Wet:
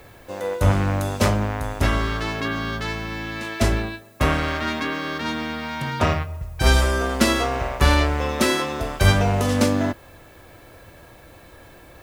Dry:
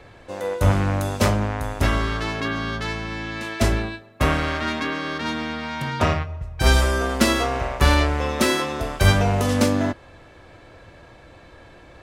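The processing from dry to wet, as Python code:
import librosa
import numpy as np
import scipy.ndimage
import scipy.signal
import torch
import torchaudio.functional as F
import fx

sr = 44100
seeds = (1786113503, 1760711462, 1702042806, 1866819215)

y = fx.dmg_noise_colour(x, sr, seeds[0], colour='blue', level_db=-58.0)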